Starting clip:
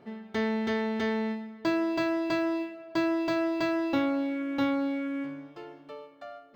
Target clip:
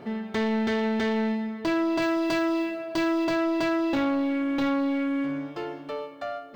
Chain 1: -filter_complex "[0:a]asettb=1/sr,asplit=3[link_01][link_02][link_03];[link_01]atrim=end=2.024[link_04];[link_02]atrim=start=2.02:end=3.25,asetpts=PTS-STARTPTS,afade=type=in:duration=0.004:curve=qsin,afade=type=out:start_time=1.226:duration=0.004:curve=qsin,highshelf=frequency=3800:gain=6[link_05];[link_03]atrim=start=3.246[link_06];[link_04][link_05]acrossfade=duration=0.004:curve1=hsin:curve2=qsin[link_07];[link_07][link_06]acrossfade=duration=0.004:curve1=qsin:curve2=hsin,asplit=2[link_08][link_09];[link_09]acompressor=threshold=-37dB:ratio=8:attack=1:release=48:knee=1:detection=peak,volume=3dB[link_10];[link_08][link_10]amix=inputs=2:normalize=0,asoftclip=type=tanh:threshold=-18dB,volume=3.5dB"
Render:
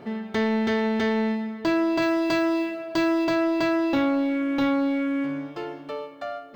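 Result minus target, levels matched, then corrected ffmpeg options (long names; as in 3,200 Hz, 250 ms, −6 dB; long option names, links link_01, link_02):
soft clipping: distortion −8 dB
-filter_complex "[0:a]asettb=1/sr,asplit=3[link_01][link_02][link_03];[link_01]atrim=end=2.024[link_04];[link_02]atrim=start=2.02:end=3.25,asetpts=PTS-STARTPTS,afade=type=in:duration=0.004:curve=qsin,afade=type=out:start_time=1.226:duration=0.004:curve=qsin,highshelf=frequency=3800:gain=6[link_05];[link_03]atrim=start=3.246[link_06];[link_04][link_05]acrossfade=duration=0.004:curve1=hsin:curve2=qsin[link_07];[link_07][link_06]acrossfade=duration=0.004:curve1=qsin:curve2=hsin,asplit=2[link_08][link_09];[link_09]acompressor=threshold=-37dB:ratio=8:attack=1:release=48:knee=1:detection=peak,volume=3dB[link_10];[link_08][link_10]amix=inputs=2:normalize=0,asoftclip=type=tanh:threshold=-24.5dB,volume=3.5dB"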